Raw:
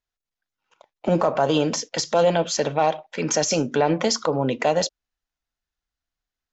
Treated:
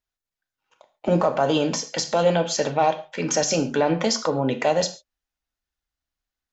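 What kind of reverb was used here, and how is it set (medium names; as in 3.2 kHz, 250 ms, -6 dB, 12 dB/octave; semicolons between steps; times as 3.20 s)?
gated-style reverb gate 160 ms falling, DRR 7.5 dB; trim -1 dB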